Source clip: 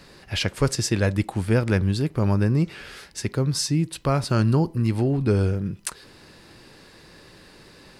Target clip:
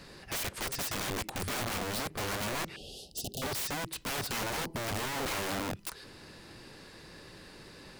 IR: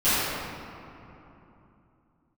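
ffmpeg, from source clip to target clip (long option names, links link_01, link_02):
-filter_complex "[0:a]asplit=2[link_01][link_02];[link_02]acompressor=threshold=-28dB:ratio=10,volume=0dB[link_03];[link_01][link_03]amix=inputs=2:normalize=0,aeval=exprs='(mod(11.9*val(0)+1,2)-1)/11.9':channel_layout=same,asettb=1/sr,asplit=3[link_04][link_05][link_06];[link_04]atrim=end=2.764[link_07];[link_05]atrim=start=2.76:end=3.42,asetpts=PTS-STARTPTS,afade=type=in:duration=0.004:curve=qsin,afade=type=out:start_time=0.656:duration=0.004:curve=qsin,asuperstop=centerf=1500:order=20:qfactor=0.74[link_08];[link_06]atrim=start=3.416[link_09];[link_07][link_08]acrossfade=duration=0.004:curve1=hsin:curve2=qsin[link_10];[link_10][link_09]acrossfade=duration=0.004:curve1=qsin:curve2=hsin,volume=-8dB"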